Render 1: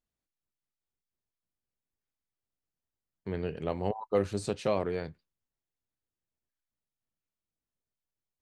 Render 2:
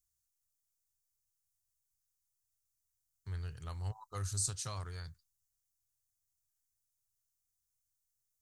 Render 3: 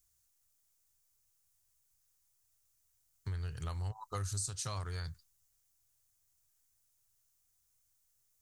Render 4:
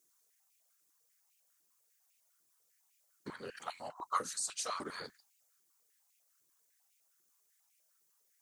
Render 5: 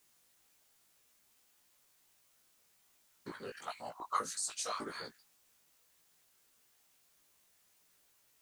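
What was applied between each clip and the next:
EQ curve 120 Hz 0 dB, 190 Hz -23 dB, 570 Hz -26 dB, 1300 Hz -6 dB, 2500 Hz -16 dB, 6300 Hz +10 dB; gain +1.5 dB
compressor 5:1, threshold -45 dBFS, peak gain reduction 13.5 dB; gain +9 dB
whisperiser; stepped high-pass 10 Hz 340–2400 Hz; gain +1 dB
requantised 12-bit, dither triangular; chorus 1.8 Hz, delay 17 ms, depth 2 ms; gain +3 dB

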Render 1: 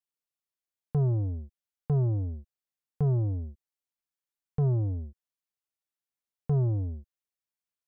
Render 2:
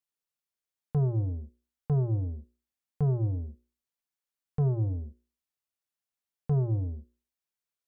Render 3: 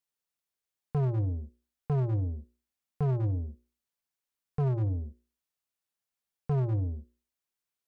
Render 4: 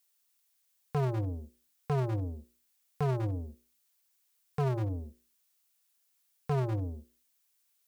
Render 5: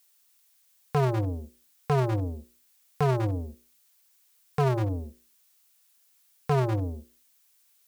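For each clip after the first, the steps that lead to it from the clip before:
notches 60/120/180/240/300/360/420/480/540 Hz
overloaded stage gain 26 dB; gain +1 dB
tilt +3 dB/oct; gain +5.5 dB
low shelf 380 Hz -5 dB; gain +9 dB

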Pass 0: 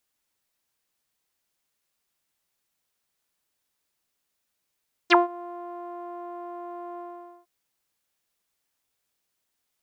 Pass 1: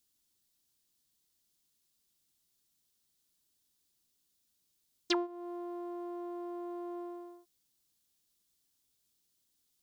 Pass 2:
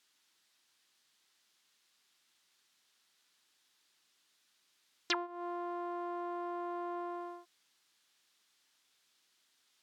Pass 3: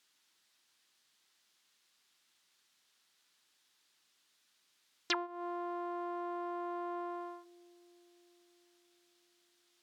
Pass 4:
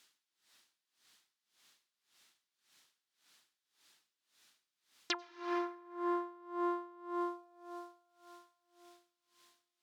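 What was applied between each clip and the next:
compressor 2:1, threshold -33 dBFS, peak gain reduction 11 dB; band shelf 1100 Hz -11 dB 2.8 oct; gain +2.5 dB
compressor 2.5:1, threshold -45 dBFS, peak gain reduction 12.5 dB; band-pass 1700 Hz, Q 0.96; gain +16 dB
dark delay 0.338 s, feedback 68%, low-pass 410 Hz, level -23.5 dB
on a send at -6 dB: reverb RT60 4.4 s, pre-delay 82 ms; on the sum: dB-linear tremolo 1.8 Hz, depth 24 dB; gain +6.5 dB

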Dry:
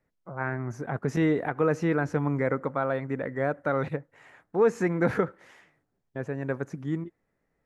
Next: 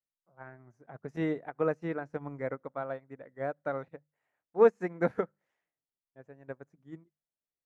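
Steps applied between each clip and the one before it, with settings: bell 650 Hz +5 dB 0.67 oct; notches 50/100/150/200 Hz; upward expander 2.5:1, over -36 dBFS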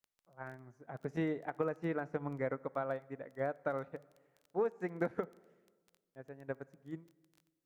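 compressor 12:1, threshold -32 dBFS, peak gain reduction 16.5 dB; crackle 13/s -49 dBFS; on a send at -22 dB: reverb RT60 1.5 s, pre-delay 32 ms; on the sum: gain +1.5 dB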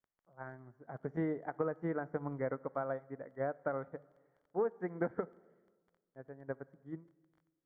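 polynomial smoothing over 41 samples

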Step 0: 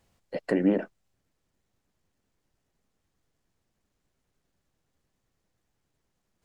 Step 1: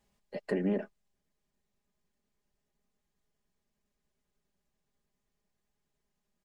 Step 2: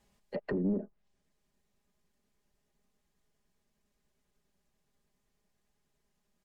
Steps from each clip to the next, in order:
notch 1400 Hz, Q 18; comb 4.9 ms; gain -7 dB
sine folder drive 7 dB, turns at -17.5 dBFS; treble ducked by the level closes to 360 Hz, closed at -22.5 dBFS; gain -7 dB

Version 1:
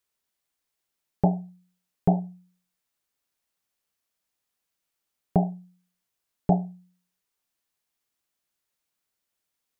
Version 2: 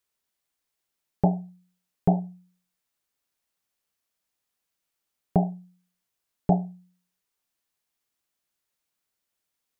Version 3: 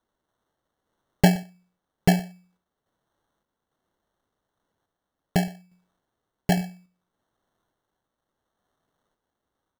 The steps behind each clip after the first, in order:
nothing audible
random-step tremolo; sample-and-hold 18×; echo 0.12 s -20.5 dB; gain +5 dB

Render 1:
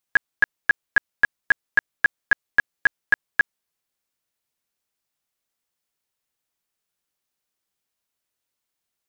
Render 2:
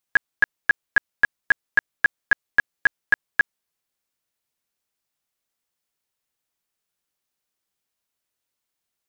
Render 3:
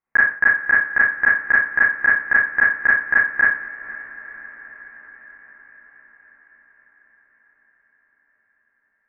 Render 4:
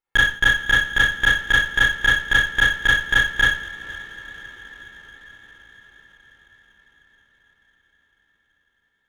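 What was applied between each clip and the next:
nothing audible
elliptic low-pass 2100 Hz, stop band 60 dB; diffused feedback echo 0.492 s, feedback 66%, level -15.5 dB; Schroeder reverb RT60 0.42 s, combs from 28 ms, DRR -7 dB
minimum comb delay 2.3 ms

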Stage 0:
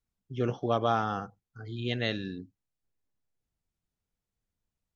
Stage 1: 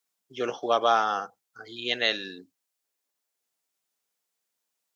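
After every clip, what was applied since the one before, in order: HPF 500 Hz 12 dB/oct; high shelf 4000 Hz +7.5 dB; gain +6 dB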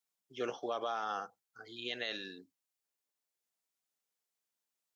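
limiter -18.5 dBFS, peak gain reduction 9.5 dB; gain -7.5 dB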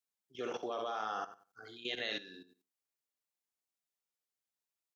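feedback echo 64 ms, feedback 30%, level -6.5 dB; level quantiser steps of 14 dB; gain +4 dB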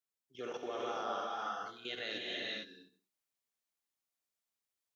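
reverb, pre-delay 3 ms, DRR -2.5 dB; gain -3.5 dB

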